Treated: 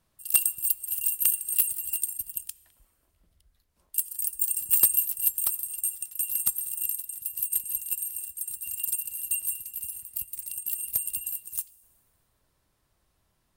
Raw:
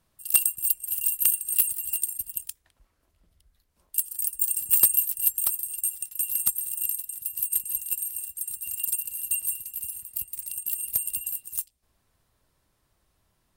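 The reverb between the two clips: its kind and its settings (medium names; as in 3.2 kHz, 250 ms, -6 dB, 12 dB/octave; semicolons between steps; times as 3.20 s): plate-style reverb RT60 2 s, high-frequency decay 0.75×, DRR 19.5 dB; trim -1.5 dB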